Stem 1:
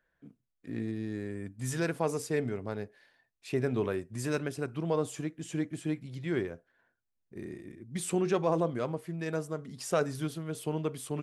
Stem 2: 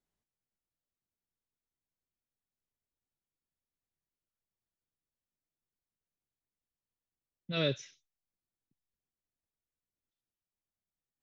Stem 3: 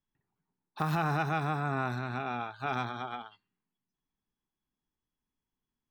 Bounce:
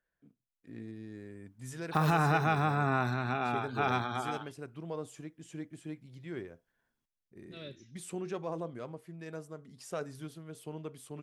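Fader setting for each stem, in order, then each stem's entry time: −9.5, −15.5, +2.5 decibels; 0.00, 0.00, 1.15 seconds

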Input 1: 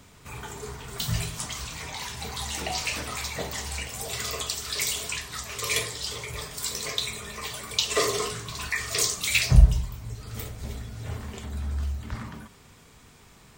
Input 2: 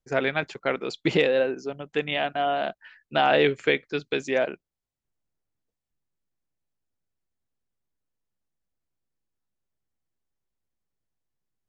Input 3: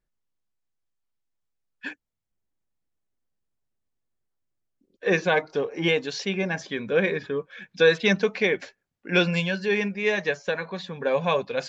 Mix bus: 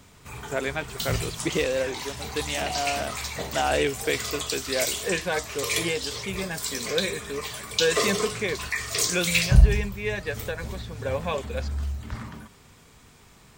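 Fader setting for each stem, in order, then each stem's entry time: 0.0, −4.0, −5.5 decibels; 0.00, 0.40, 0.00 seconds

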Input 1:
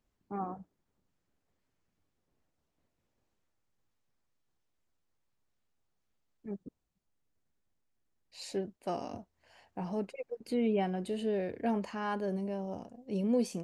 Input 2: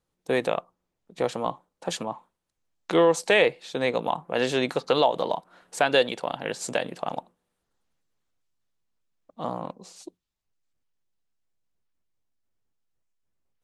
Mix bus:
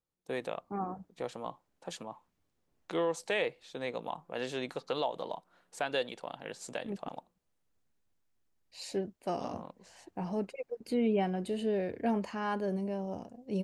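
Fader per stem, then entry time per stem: +1.0, −12.0 decibels; 0.40, 0.00 seconds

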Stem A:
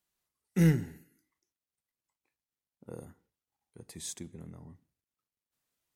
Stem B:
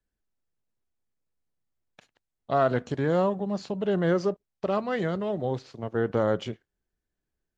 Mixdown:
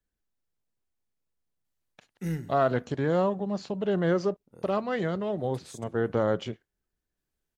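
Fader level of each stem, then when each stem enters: −8.0, −1.0 decibels; 1.65, 0.00 seconds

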